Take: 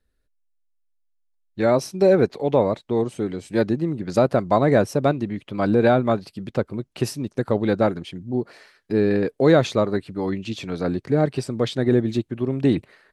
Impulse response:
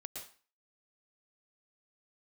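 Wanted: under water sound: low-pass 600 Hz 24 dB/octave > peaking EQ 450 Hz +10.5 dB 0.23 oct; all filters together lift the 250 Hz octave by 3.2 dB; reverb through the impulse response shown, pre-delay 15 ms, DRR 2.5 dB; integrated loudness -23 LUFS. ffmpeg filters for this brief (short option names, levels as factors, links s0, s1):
-filter_complex "[0:a]equalizer=f=250:t=o:g=3.5,asplit=2[s0][s1];[1:a]atrim=start_sample=2205,adelay=15[s2];[s1][s2]afir=irnorm=-1:irlink=0,volume=1.06[s3];[s0][s3]amix=inputs=2:normalize=0,lowpass=f=600:w=0.5412,lowpass=f=600:w=1.3066,equalizer=f=450:t=o:w=0.23:g=10.5,volume=0.473"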